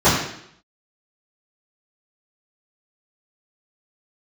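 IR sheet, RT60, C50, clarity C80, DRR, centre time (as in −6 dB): 0.70 s, 2.5 dB, 6.0 dB, −15.5 dB, 49 ms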